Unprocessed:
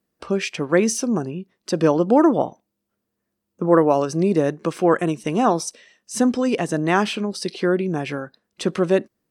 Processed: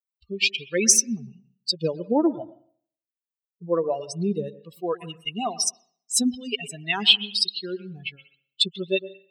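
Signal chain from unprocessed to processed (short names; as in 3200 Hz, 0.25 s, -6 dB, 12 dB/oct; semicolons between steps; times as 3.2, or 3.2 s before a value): per-bin expansion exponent 3; resonant high shelf 2200 Hz +13.5 dB, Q 3; notch 1100 Hz, Q 19; on a send: reverb, pre-delay 0.108 s, DRR 16 dB; on the sum: gain -1.5 dB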